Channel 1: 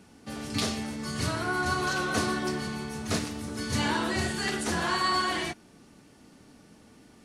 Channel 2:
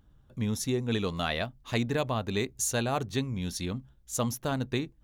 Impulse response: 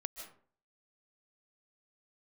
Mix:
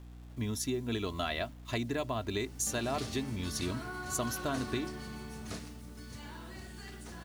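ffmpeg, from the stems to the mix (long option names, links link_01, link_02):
-filter_complex "[0:a]acompressor=threshold=-46dB:ratio=2,adelay=2400,volume=-2dB,afade=type=out:start_time=5.54:duration=0.27:silence=0.446684[link_01];[1:a]agate=range=-9dB:threshold=-47dB:ratio=16:detection=peak,aecho=1:1:3:0.59,acompressor=threshold=-28dB:ratio=6,volume=-2dB[link_02];[link_01][link_02]amix=inputs=2:normalize=0,highpass=45,aeval=exprs='val(0)+0.00398*(sin(2*PI*60*n/s)+sin(2*PI*2*60*n/s)/2+sin(2*PI*3*60*n/s)/3+sin(2*PI*4*60*n/s)/4+sin(2*PI*5*60*n/s)/5)':channel_layout=same,acrusher=bits=9:mix=0:aa=0.000001"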